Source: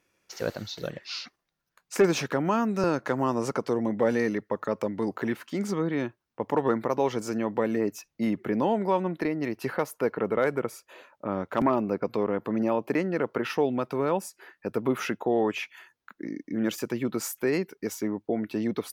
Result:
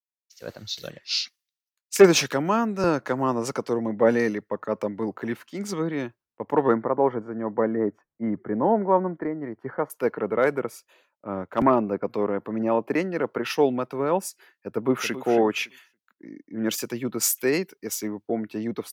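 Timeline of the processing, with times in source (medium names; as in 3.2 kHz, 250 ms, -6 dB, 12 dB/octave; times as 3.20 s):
6.75–9.90 s: Savitzky-Golay filter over 41 samples
14.74–15.19 s: echo throw 280 ms, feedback 30%, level -9.5 dB
whole clip: bass shelf 140 Hz -4 dB; level rider gain up to 9 dB; three bands expanded up and down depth 100%; trim -6 dB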